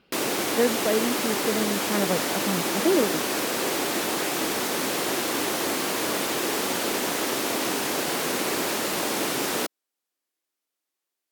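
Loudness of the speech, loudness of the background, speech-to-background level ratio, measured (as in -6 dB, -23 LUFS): -27.5 LUFS, -25.5 LUFS, -2.0 dB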